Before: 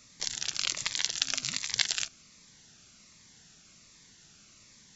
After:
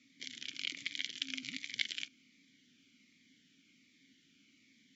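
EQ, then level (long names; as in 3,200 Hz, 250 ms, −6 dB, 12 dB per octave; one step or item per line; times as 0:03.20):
formant filter i
+6.0 dB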